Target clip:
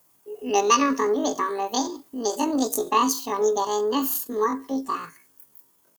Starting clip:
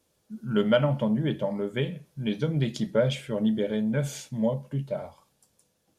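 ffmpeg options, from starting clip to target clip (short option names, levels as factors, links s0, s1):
-af "crystalizer=i=4:c=0,asetrate=85689,aresample=44100,atempo=0.514651,volume=1.33"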